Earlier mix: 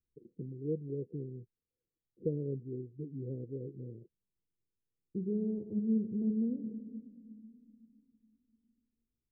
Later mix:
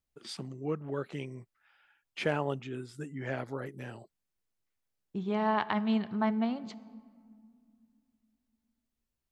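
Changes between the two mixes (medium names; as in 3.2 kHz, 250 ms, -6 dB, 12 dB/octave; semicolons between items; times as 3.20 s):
second voice: send -8.0 dB; master: remove rippled Chebyshev low-pass 500 Hz, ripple 3 dB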